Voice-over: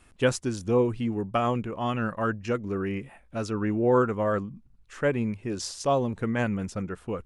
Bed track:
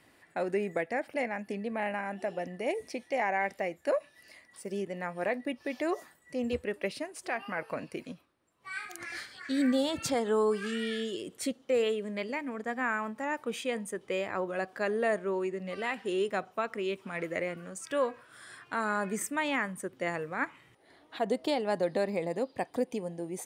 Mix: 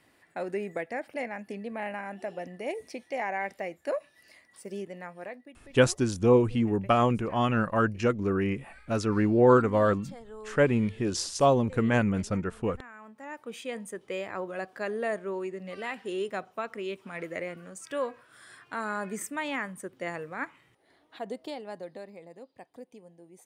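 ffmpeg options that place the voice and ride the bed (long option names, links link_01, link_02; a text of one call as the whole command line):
ffmpeg -i stem1.wav -i stem2.wav -filter_complex "[0:a]adelay=5550,volume=2.5dB[link_01];[1:a]volume=13.5dB,afade=type=out:start_time=4.76:duration=0.75:silence=0.16788,afade=type=in:start_time=12.93:duration=0.92:silence=0.16788,afade=type=out:start_time=20.27:duration=1.87:silence=0.211349[link_02];[link_01][link_02]amix=inputs=2:normalize=0" out.wav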